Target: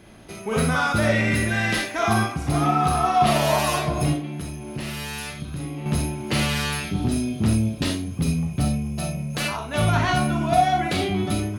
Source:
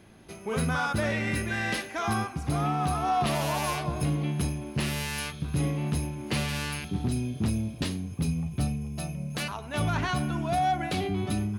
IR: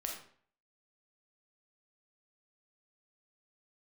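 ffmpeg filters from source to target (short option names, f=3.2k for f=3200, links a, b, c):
-filter_complex "[0:a]asettb=1/sr,asplit=3[a][b][c];[a]atrim=end=4.134[d];[b]atrim=start=4.13:end=5.86,asetpts=PTS-STARTPTS,afade=t=in:d=0.004:c=qsin,afade=t=out:st=1.726:d=0.004:c=qsin,acompressor=threshold=-35dB:ratio=5[e];[c]atrim=start=5.856[f];[d][e]acrossfade=d=0.004:c1=hsin:c2=qsin[g];[g][f]acrossfade=d=0.004:c1=qsin:c2=hsin[h];[1:a]atrim=start_sample=2205,afade=t=out:st=0.14:d=0.01,atrim=end_sample=6615[i];[h][i]afir=irnorm=-1:irlink=0,volume=7.5dB"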